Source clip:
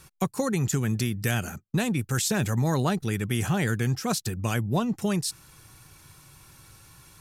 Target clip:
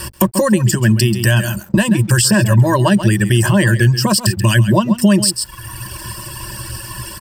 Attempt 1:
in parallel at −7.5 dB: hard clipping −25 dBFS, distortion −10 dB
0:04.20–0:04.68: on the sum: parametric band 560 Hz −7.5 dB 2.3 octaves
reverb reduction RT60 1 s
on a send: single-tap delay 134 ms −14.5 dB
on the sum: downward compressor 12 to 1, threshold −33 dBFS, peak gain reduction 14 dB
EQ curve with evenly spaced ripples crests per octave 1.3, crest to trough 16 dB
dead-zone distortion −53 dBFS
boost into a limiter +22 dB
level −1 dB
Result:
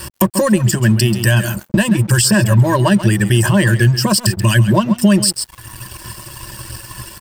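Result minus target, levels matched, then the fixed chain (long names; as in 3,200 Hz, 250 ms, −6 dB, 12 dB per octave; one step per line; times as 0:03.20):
hard clipping: distortion +32 dB; dead-zone distortion: distortion +10 dB
in parallel at −7.5 dB: hard clipping −14.5 dBFS, distortion −42 dB
0:04.20–0:04.68: on the sum: parametric band 560 Hz −7.5 dB 2.3 octaves
reverb reduction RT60 1 s
on a send: single-tap delay 134 ms −14.5 dB
on the sum: downward compressor 12 to 1, threshold −33 dBFS, peak gain reduction 15.5 dB
EQ curve with evenly spaced ripples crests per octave 1.3, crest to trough 16 dB
dead-zone distortion −64.5 dBFS
boost into a limiter +22 dB
level −1 dB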